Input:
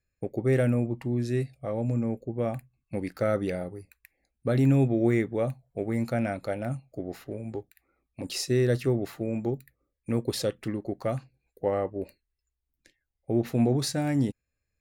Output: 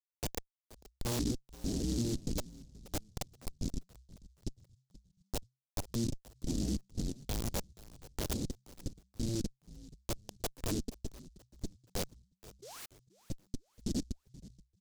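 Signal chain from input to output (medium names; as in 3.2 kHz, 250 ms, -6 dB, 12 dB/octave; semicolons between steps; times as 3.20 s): cycle switcher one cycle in 2, inverted; high-pass 170 Hz 6 dB/octave; treble shelf 2.4 kHz -6.5 dB; hum notches 50/100/150/200/250/300/350/400/450 Hz; inverted gate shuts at -20 dBFS, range -31 dB; Schmitt trigger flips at -35 dBFS; vibrato 0.68 Hz 23 cents; painted sound rise, 12.62–12.86 s, 350–2900 Hz -55 dBFS; LFO low-pass square 0.42 Hz 270–3800 Hz; on a send: frequency-shifting echo 477 ms, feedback 40%, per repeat -66 Hz, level -18 dB; on the sum: delay time shaken by noise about 5.4 kHz, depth 0.16 ms; trim +5.5 dB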